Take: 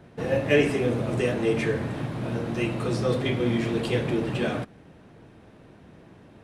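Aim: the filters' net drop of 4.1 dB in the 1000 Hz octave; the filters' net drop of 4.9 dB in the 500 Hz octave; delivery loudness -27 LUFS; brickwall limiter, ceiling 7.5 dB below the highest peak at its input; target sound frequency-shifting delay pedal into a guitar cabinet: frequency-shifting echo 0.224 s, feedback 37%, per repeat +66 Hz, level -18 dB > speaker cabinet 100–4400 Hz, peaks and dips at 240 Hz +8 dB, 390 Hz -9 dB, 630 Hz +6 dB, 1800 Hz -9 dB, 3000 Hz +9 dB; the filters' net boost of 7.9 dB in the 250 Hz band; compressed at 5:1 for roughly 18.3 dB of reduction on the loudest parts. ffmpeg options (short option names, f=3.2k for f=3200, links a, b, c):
-filter_complex "[0:a]equalizer=f=250:t=o:g=6,equalizer=f=500:t=o:g=-5,equalizer=f=1k:t=o:g=-5.5,acompressor=threshold=-38dB:ratio=5,alimiter=level_in=9.5dB:limit=-24dB:level=0:latency=1,volume=-9.5dB,asplit=4[a][b][c][d];[b]adelay=224,afreqshift=66,volume=-18dB[e];[c]adelay=448,afreqshift=132,volume=-26.6dB[f];[d]adelay=672,afreqshift=198,volume=-35.3dB[g];[a][e][f][g]amix=inputs=4:normalize=0,highpass=100,equalizer=f=240:t=q:w=4:g=8,equalizer=f=390:t=q:w=4:g=-9,equalizer=f=630:t=q:w=4:g=6,equalizer=f=1.8k:t=q:w=4:g=-9,equalizer=f=3k:t=q:w=4:g=9,lowpass=f=4.4k:w=0.5412,lowpass=f=4.4k:w=1.3066,volume=13.5dB"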